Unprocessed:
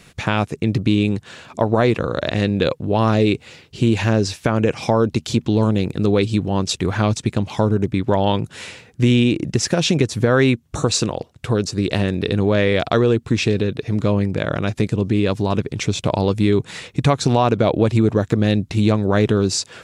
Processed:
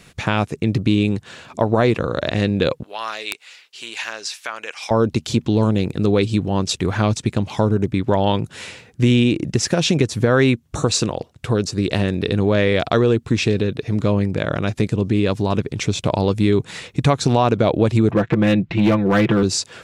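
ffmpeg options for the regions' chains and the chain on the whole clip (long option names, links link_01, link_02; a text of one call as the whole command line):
ffmpeg -i in.wav -filter_complex "[0:a]asettb=1/sr,asplit=3[link_01][link_02][link_03];[link_01]atrim=end=2.834[link_04];[link_02]atrim=start=2.83:end=4.91,asetpts=PTS-STARTPTS,afade=type=in:duration=0.004:curve=qsin,afade=type=out:start_time=2.076:duration=0.004:curve=qsin,highpass=1300,aeval=exprs='(mod(3.55*val(0)+1,2)-1)/3.55':channel_layout=same[link_05];[link_03]atrim=start=4.906[link_06];[link_04][link_05]acrossfade=duration=0.004:curve1=hsin:curve2=qsin[link_07];[link_07][link_06]acrossfade=duration=0.004:curve1=qsin:curve2=hsin,asettb=1/sr,asplit=3[link_08][link_09][link_10];[link_08]atrim=end=18.114[link_11];[link_09]atrim=start=18.11:end=19.43,asetpts=PTS-STARTPTS,afade=type=in:duration=0.004:curve=qsin,afade=type=out:start_time=1.316:duration=0.004:curve=qsin,lowpass=frequency=2400:width_type=q:width=1.6,aecho=1:1:5.9:0.79,atrim=end_sample=58212,asoftclip=type=hard:threshold=-10dB[link_12];[link_10]atrim=start=19.426[link_13];[link_11][link_12]acrossfade=duration=0.004:curve1=hsin:curve2=qsin[link_14];[link_14][link_13]acrossfade=duration=0.004:curve1=qsin:curve2=hsin" out.wav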